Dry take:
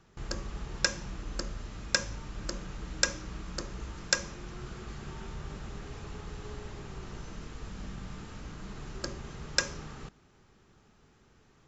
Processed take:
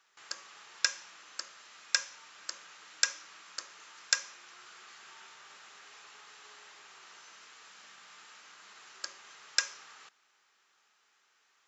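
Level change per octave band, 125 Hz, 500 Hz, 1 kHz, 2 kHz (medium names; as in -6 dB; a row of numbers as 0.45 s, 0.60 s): under -40 dB, -16.0 dB, -4.5 dB, -1.5 dB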